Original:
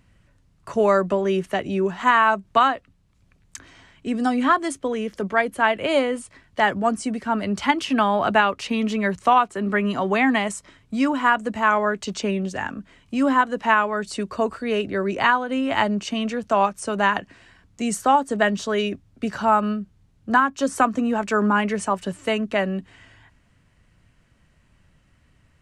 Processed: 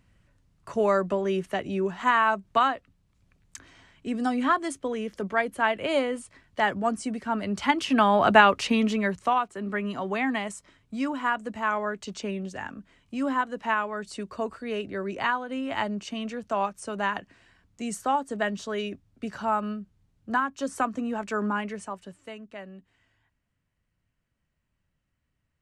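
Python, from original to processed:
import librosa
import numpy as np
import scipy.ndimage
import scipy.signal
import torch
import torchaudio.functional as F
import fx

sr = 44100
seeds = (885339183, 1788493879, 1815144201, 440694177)

y = fx.gain(x, sr, db=fx.line((7.48, -5.0), (8.56, 3.0), (9.37, -8.0), (21.48, -8.0), (22.38, -19.0)))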